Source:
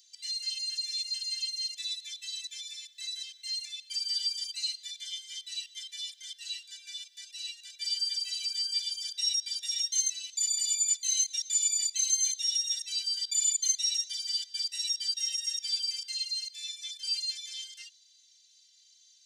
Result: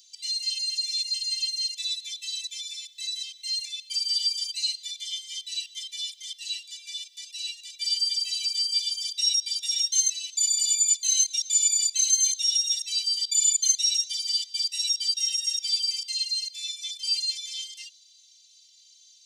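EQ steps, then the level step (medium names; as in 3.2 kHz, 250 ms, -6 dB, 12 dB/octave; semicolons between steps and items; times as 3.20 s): steep high-pass 2.2 kHz 36 dB/octave; +5.5 dB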